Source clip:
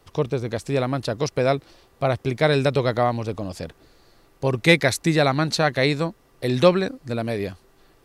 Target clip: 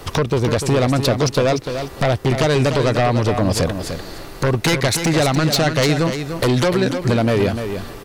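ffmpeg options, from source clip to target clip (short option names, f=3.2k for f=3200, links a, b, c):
-filter_complex "[0:a]acompressor=threshold=-33dB:ratio=5,aeval=exprs='0.133*sin(PI/2*3.98*val(0)/0.133)':c=same,asplit=2[a][b];[b]aecho=0:1:297|594|891:0.398|0.0717|0.0129[c];[a][c]amix=inputs=2:normalize=0,volume=5.5dB"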